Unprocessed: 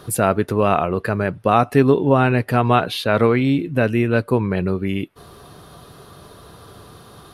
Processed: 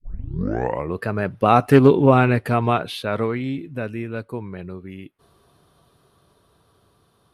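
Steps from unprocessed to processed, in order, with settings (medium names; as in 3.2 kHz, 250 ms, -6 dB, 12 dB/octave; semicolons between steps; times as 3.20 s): tape start-up on the opening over 1.02 s; Doppler pass-by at 1.87 s, 8 m/s, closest 3.9 m; loudspeaker Doppler distortion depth 0.13 ms; trim +2 dB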